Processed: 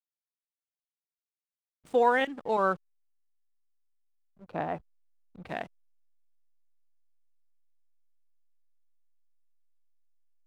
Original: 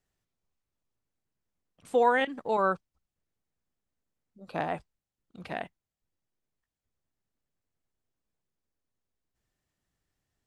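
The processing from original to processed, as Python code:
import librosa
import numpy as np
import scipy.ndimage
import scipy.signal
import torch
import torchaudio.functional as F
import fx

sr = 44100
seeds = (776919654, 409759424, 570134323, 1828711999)

y = fx.backlash(x, sr, play_db=-45.5)
y = fx.high_shelf(y, sr, hz=2700.0, db=-11.5, at=(4.44, 5.47))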